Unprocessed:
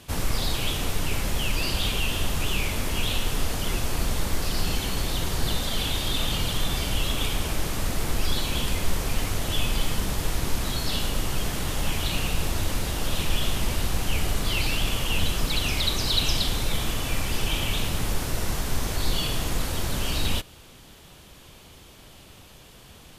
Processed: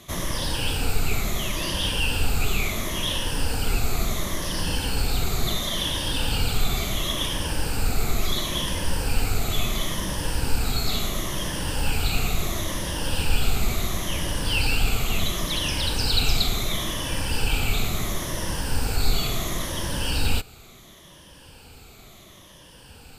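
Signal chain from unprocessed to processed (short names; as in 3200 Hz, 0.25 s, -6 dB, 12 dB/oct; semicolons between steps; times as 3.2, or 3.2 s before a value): moving spectral ripple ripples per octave 1.2, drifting -0.72 Hz, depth 10 dB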